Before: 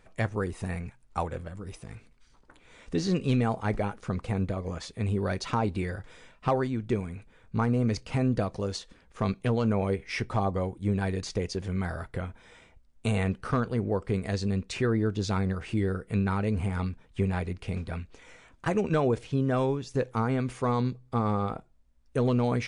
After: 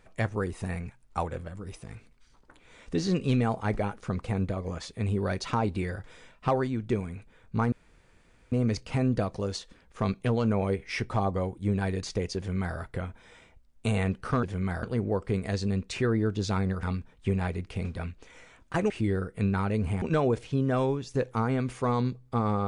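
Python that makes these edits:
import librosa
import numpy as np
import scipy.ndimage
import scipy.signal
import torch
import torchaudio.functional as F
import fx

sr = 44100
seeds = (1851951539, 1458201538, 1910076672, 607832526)

y = fx.edit(x, sr, fx.insert_room_tone(at_s=7.72, length_s=0.8),
    fx.duplicate(start_s=11.57, length_s=0.4, to_s=13.63),
    fx.move(start_s=15.63, length_s=1.12, to_s=18.82), tone=tone)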